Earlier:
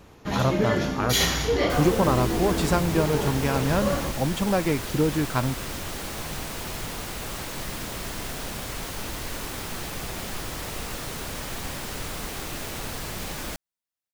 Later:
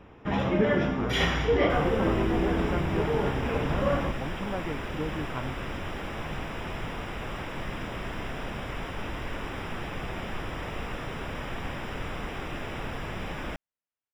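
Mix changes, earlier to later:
speech -11.0 dB; master: add polynomial smoothing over 25 samples

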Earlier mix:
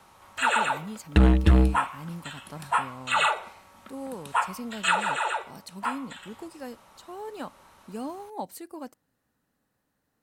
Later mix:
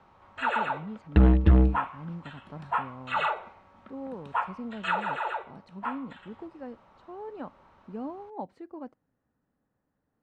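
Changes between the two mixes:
speech: add high shelf 3700 Hz -10.5 dB; master: add tape spacing loss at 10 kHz 32 dB

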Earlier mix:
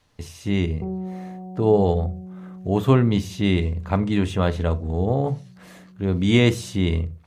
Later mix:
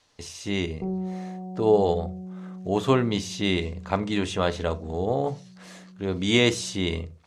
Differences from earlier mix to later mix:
speech: add tone controls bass -10 dB, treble +13 dB; master: add air absorption 87 m

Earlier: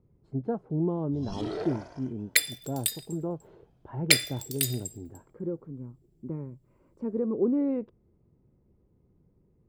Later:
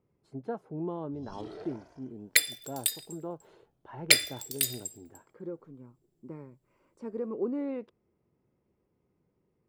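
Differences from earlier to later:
speech: add tilt +4 dB/oct; first sound -10.5 dB

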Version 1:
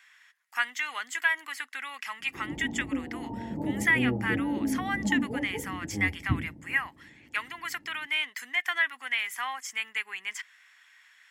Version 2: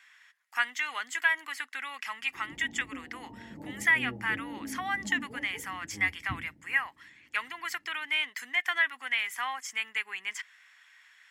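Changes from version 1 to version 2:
background -11.5 dB; master: add high shelf 9500 Hz -4 dB

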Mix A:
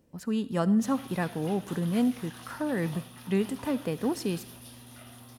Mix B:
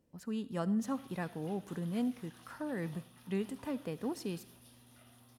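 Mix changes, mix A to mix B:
speech -8.5 dB; background -12.0 dB

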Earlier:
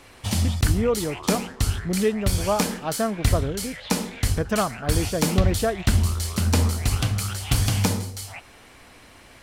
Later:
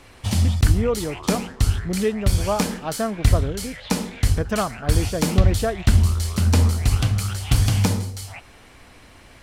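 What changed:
background: add low shelf 140 Hz +6 dB; master: add high shelf 11000 Hz -4 dB

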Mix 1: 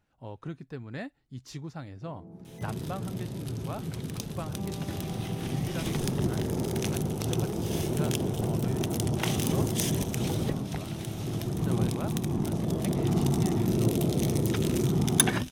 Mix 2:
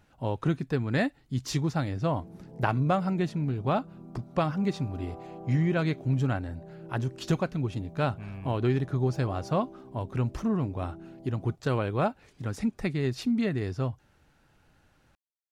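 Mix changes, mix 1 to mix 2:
speech +11.5 dB; second sound: muted

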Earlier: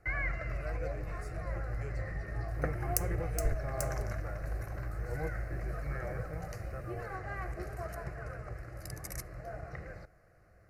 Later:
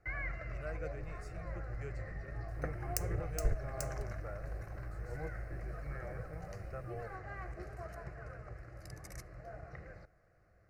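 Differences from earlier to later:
first sound -5.5 dB; master: add bell 12000 Hz -9.5 dB 0.83 oct

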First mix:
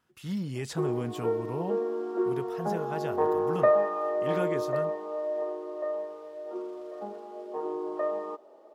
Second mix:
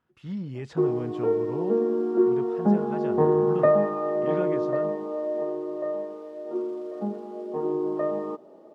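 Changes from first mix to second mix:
speech: add tape spacing loss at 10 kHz 23 dB; background: remove HPF 540 Hz 12 dB/oct

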